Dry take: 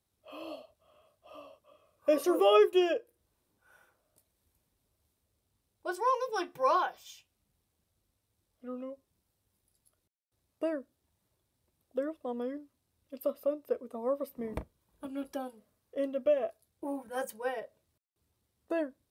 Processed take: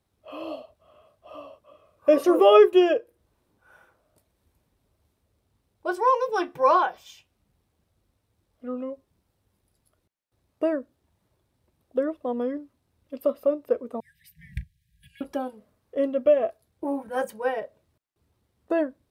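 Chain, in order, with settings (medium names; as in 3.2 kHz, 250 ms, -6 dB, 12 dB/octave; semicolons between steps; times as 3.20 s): 14.00–15.21 s: brick-wall FIR band-stop 180–1600 Hz; treble shelf 3.7 kHz -10.5 dB; trim +8.5 dB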